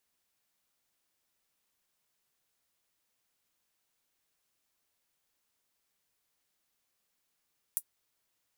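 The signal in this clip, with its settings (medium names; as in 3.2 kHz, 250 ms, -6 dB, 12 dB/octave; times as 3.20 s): closed hi-hat, high-pass 9.8 kHz, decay 0.07 s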